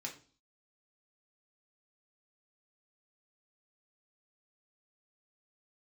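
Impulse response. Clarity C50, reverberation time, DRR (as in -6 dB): 11.0 dB, 0.40 s, -1.0 dB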